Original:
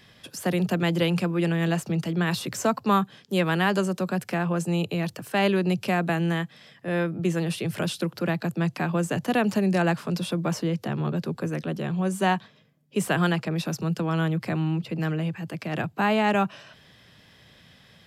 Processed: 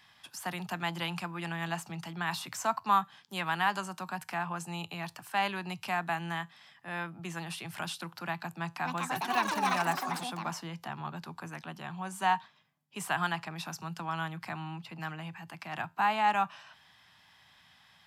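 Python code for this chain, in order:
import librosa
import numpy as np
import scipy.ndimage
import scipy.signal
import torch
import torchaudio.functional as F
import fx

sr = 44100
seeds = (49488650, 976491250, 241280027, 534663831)

y = fx.echo_pitch(x, sr, ms=284, semitones=7, count=3, db_per_echo=-3.0, at=(8.56, 11.05))
y = fx.low_shelf_res(y, sr, hz=650.0, db=-9.0, q=3.0)
y = fx.comb_fb(y, sr, f0_hz=84.0, decay_s=0.25, harmonics='all', damping=0.0, mix_pct=30)
y = F.gain(torch.from_numpy(y), -4.0).numpy()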